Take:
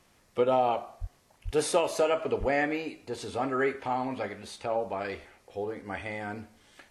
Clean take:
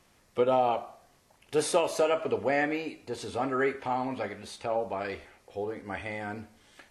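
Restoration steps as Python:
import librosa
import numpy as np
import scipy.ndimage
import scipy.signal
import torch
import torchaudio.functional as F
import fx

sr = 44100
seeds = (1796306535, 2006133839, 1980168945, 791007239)

y = fx.highpass(x, sr, hz=140.0, slope=24, at=(1.0, 1.12), fade=0.02)
y = fx.highpass(y, sr, hz=140.0, slope=24, at=(1.44, 1.56), fade=0.02)
y = fx.highpass(y, sr, hz=140.0, slope=24, at=(2.39, 2.51), fade=0.02)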